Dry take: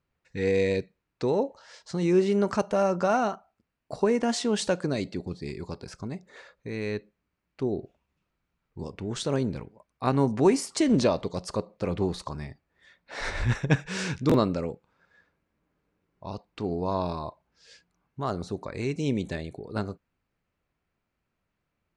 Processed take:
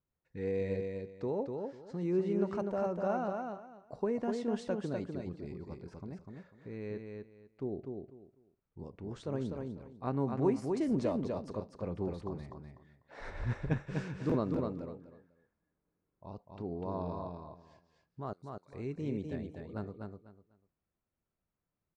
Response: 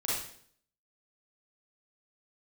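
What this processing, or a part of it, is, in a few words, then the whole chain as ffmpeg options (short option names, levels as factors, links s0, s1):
through cloth: -filter_complex "[0:a]highshelf=f=2200:g=-16,asettb=1/sr,asplit=3[s0][s1][s2];[s0]atrim=end=18.334[s3];[s1]atrim=start=18.33:end=18.73,asetpts=PTS-STARTPTS,afade=t=in:d=0.004:c=qsin,afade=t=out:st=0.396:d=0.004:c=qsin,aderivative[s4];[s2]atrim=start=18.726[s5];[s3][s4]acrossfade=d=0.004:c1=hsin:c2=qsin[s6];[s6][s5]acrossfade=d=0.004:c1=qsin:c2=hsin,aecho=1:1:248|496|744:0.596|0.131|0.0288,volume=0.355"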